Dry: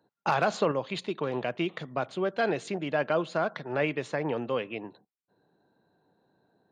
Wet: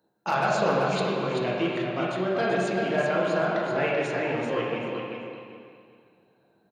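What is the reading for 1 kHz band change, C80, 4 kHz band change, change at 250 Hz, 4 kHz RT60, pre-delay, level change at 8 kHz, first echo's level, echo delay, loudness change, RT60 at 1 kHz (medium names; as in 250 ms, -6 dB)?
+4.0 dB, -1.0 dB, +4.0 dB, +4.0 dB, 2.1 s, 6 ms, +4.0 dB, -5.5 dB, 386 ms, +4.0 dB, 2.1 s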